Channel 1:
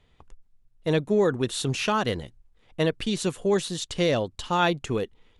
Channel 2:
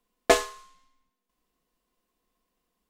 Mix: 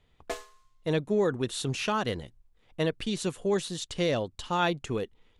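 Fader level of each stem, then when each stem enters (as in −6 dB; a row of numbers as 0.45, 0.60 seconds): −4.0, −16.0 decibels; 0.00, 0.00 seconds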